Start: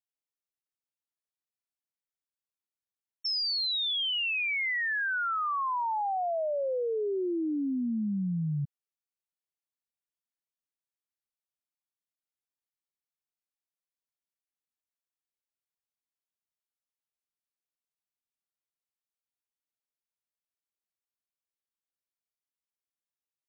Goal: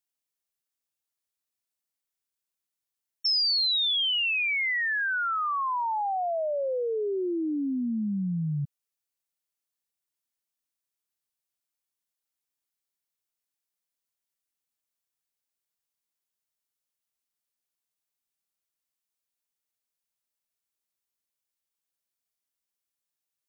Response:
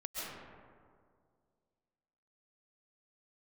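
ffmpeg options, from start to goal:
-af "highshelf=f=4100:g=7,volume=1.19"

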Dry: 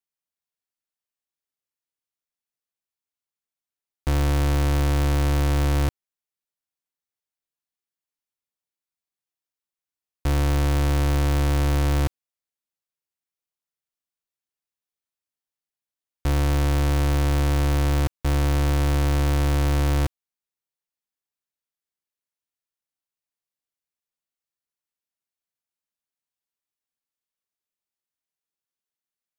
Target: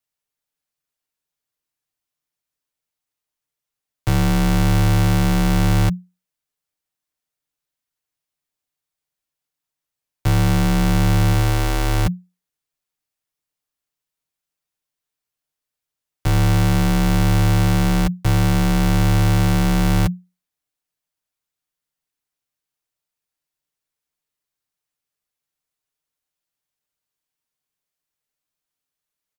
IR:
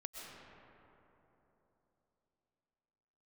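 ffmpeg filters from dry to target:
-filter_complex "[0:a]aecho=1:1:6.4:0.43,afreqshift=-180,asettb=1/sr,asplit=3[s0][s1][s2];[s0]atrim=end=11.334[s3];[s1]atrim=start=11.33:end=12.06,asetpts=PTS-STARTPTS,afade=t=in:d=0.004:c=qsin,afade=t=out:st=0.726:d=0.004:c=qsin,bandreject=f=60:t=h:w=6,bandreject=f=120:t=h:w=6,bandreject=f=180:t=h:w=6[s4];[s2]atrim=start=12.056[s5];[s3][s4]acrossfade=d=0.004:c1=hsin:c2=qsin[s6];[s6][s5]acrossfade=d=0.004:c1=qsin:c2=hsin,volume=1.88"

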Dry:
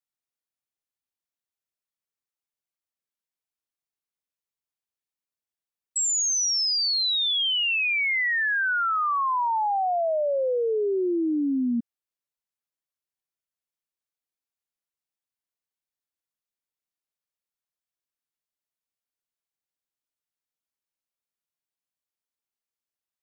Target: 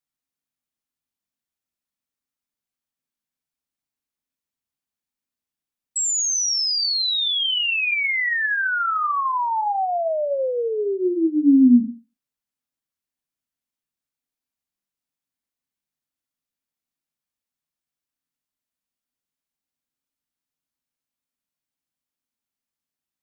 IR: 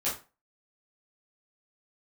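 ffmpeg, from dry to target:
-filter_complex "[0:a]asplit=2[s0][s1];[s1]lowshelf=f=370:t=q:w=3:g=10.5[s2];[1:a]atrim=start_sample=2205[s3];[s2][s3]afir=irnorm=-1:irlink=0,volume=0.158[s4];[s0][s4]amix=inputs=2:normalize=0,volume=1.12"

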